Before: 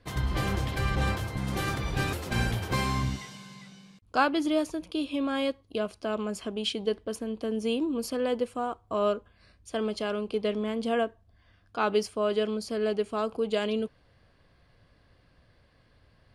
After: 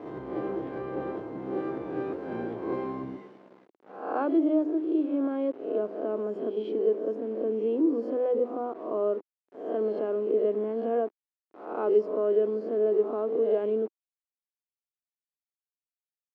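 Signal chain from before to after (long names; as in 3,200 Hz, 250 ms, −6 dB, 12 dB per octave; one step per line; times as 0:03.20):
peak hold with a rise ahead of every peak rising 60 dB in 0.65 s
mains-hum notches 50/100/150/200/250/300/350/400 Hz
in parallel at −3 dB: brickwall limiter −20.5 dBFS, peak gain reduction 11 dB
on the sum: bit-depth reduction 6 bits, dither none
four-pole ladder band-pass 400 Hz, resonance 50%
level +7 dB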